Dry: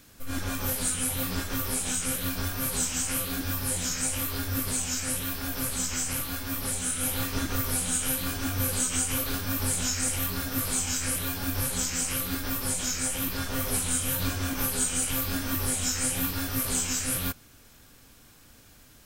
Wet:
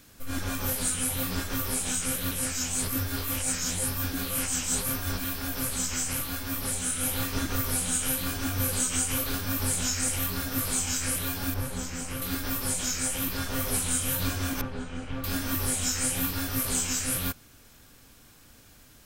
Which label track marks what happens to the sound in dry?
2.310000	5.240000	reverse
11.540000	12.220000	treble shelf 2 kHz -10 dB
14.610000	15.240000	tape spacing loss at 10 kHz 37 dB

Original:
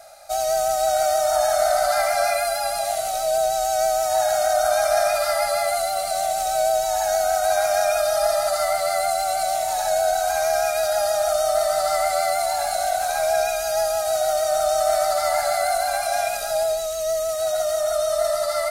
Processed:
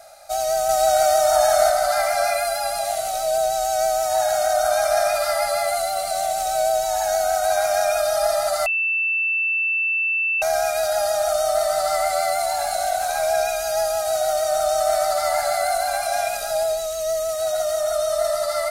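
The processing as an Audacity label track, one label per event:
0.690000	1.700000	gain +3 dB
8.660000	10.420000	bleep 2.66 kHz -18.5 dBFS

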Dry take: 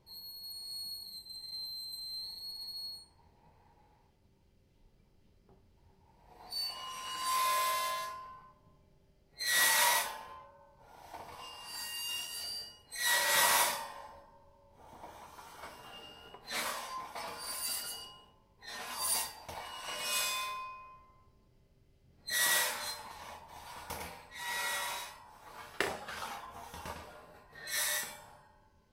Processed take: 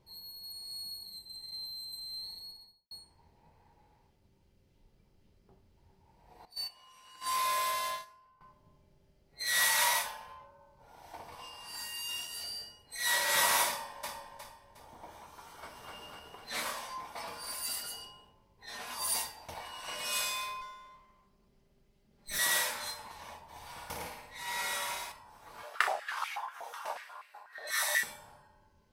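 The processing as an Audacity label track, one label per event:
2.340000	2.910000	studio fade out
6.450000	8.410000	gate -38 dBFS, range -15 dB
9.530000	10.410000	peaking EQ 330 Hz -10 dB
13.670000	14.150000	echo throw 360 ms, feedback 35%, level -5 dB
15.500000	15.940000	echo throw 250 ms, feedback 65%, level -2 dB
20.610000	22.390000	comb filter that takes the minimum delay 5 ms
23.440000	25.120000	flutter echo walls apart 9.5 m, dies away in 0.59 s
25.630000	28.030000	step-sequenced high-pass 8.2 Hz 580–2200 Hz

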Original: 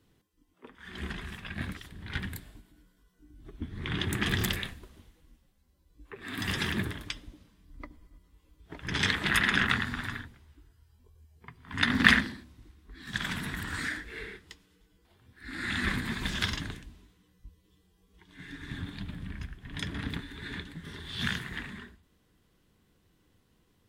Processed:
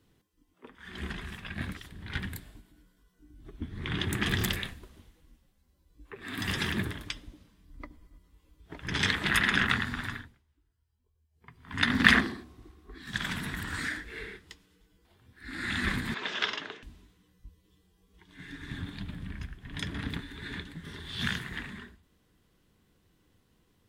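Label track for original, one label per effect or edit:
10.100000	11.640000	dip -15.5 dB, fades 0.33 s
12.140000	12.980000	small resonant body resonances 400/720/1100 Hz, height 12 dB, ringing for 25 ms
16.140000	16.830000	cabinet simulation 420–5600 Hz, peaks and dips at 430 Hz +10 dB, 630 Hz +5 dB, 900 Hz +3 dB, 1.3 kHz +4 dB, 2.8 kHz +4 dB, 4.5 kHz -4 dB

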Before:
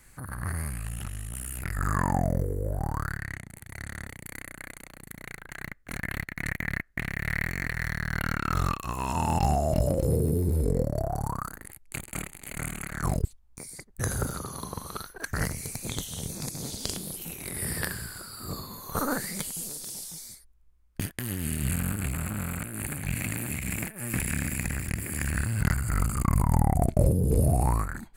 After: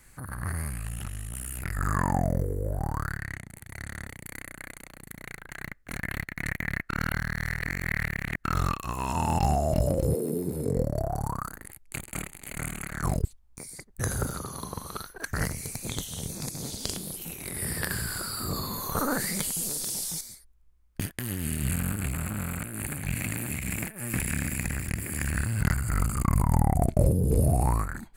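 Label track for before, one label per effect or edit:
6.890000	8.440000	reverse
10.130000	10.750000	high-pass 260 Hz -> 87 Hz 24 dB/octave
17.900000	20.210000	level flattener amount 50%

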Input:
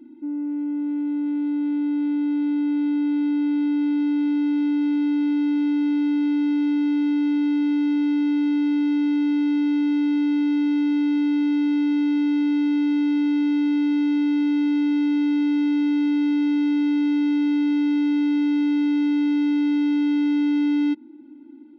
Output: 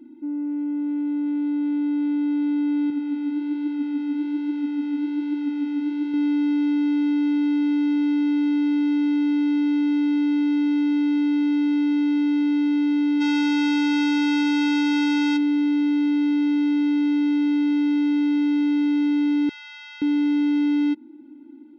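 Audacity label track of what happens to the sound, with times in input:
2.900000	6.140000	flange 1.2 Hz, delay 1.7 ms, depth 9.7 ms, regen +66%
13.200000	15.360000	formants flattened exponent 0.6
19.490000	20.020000	inverse Chebyshev high-pass stop band from 260 Hz, stop band 70 dB

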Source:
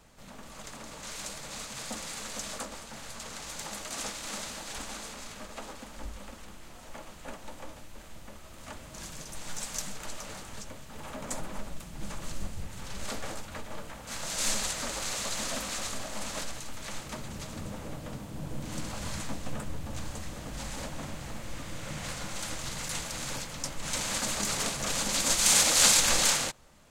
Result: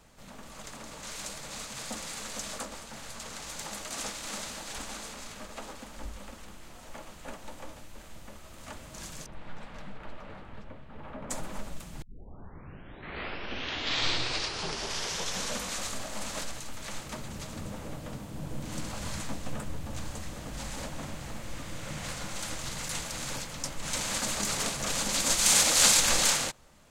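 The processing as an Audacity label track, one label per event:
9.260000	11.300000	distance through air 480 m
12.020000	12.020000	tape start 3.84 s

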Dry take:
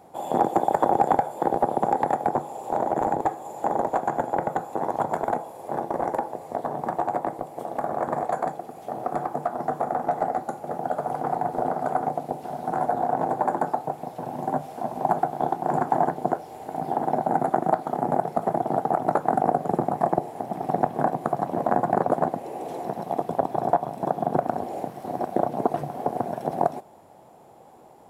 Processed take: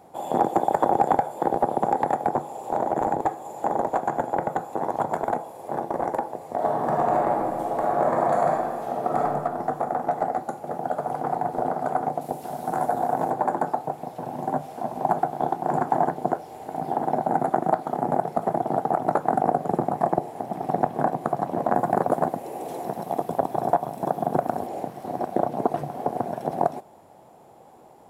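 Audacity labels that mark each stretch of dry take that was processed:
6.540000	9.240000	reverb throw, RT60 1.6 s, DRR -3.5 dB
12.210000	13.300000	treble shelf 5.9 kHz +11.5 dB
21.750000	24.670000	treble shelf 8.6 kHz +10 dB

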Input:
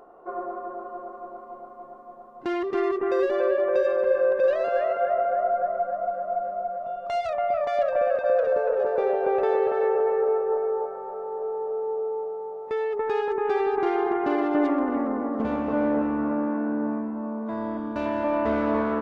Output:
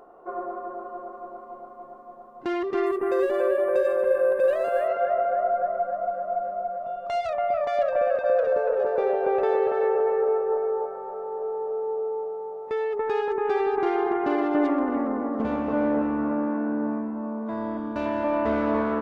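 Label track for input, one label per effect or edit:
2.860000	4.880000	decimation joined by straight lines rate divided by 4×

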